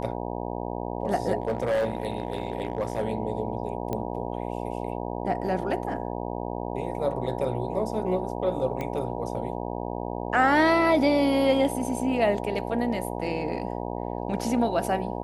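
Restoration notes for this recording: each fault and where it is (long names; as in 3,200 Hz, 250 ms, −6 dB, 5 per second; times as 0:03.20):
mains buzz 60 Hz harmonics 16 −32 dBFS
0:01.42–0:03.05: clipping −21 dBFS
0:03.93: click −17 dBFS
0:08.81: click −19 dBFS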